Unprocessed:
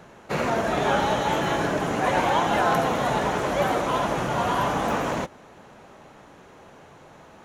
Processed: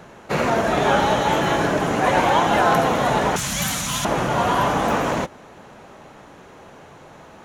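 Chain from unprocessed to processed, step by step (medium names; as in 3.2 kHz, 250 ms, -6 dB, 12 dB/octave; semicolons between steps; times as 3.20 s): 3.36–4.05 s: FFT filter 210 Hz 0 dB, 380 Hz -22 dB, 6.9 kHz +14 dB; trim +4.5 dB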